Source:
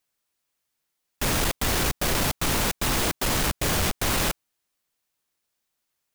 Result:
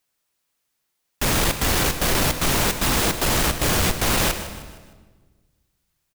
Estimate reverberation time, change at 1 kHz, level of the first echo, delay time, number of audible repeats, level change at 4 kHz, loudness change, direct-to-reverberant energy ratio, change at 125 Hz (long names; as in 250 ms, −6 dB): 1.4 s, +4.0 dB, −14.0 dB, 154 ms, 3, +4.0 dB, +4.0 dB, 8.0 dB, +4.0 dB